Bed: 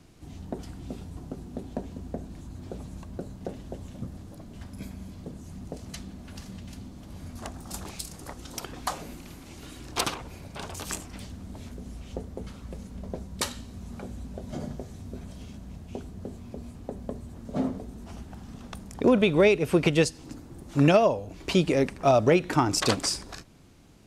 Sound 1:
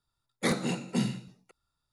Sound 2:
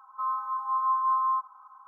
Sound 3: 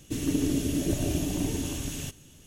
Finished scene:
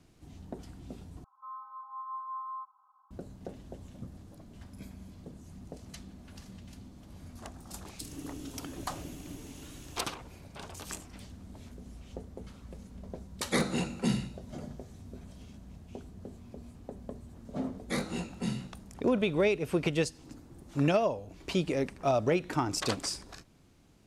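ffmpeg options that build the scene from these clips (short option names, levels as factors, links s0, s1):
-filter_complex "[1:a]asplit=2[s0][s1];[0:a]volume=0.447[s2];[2:a]lowpass=1200[s3];[s1]flanger=delay=17.5:depth=5.5:speed=1.4[s4];[s2]asplit=2[s5][s6];[s5]atrim=end=1.244[s7];[s3]atrim=end=1.87,asetpts=PTS-STARTPTS,volume=0.251[s8];[s6]atrim=start=3.106[s9];[3:a]atrim=end=2.46,asetpts=PTS-STARTPTS,volume=0.15,afade=t=in:d=0.004:c=hsin,afade=t=out:st=2.456:d=0.004:c=hsin,adelay=7900[s10];[s0]atrim=end=1.92,asetpts=PTS-STARTPTS,volume=0.944,afade=t=in:d=0.004:c=hsin,afade=t=out:st=1.916:d=0.004:c=hsin,adelay=13090[s11];[s4]atrim=end=1.92,asetpts=PTS-STARTPTS,volume=0.75,afade=t=in:d=0.004:c=hsin,afade=t=out:st=1.916:d=0.004:c=hsin,adelay=17470[s12];[s7][s8]acrossfade=d=0.004:c1=hsin:c2=hsin[s13];[s13][s9]acrossfade=d=0.004:c1=hsin:c2=hsin[s14];[s14][s10][s11][s12]amix=inputs=4:normalize=0"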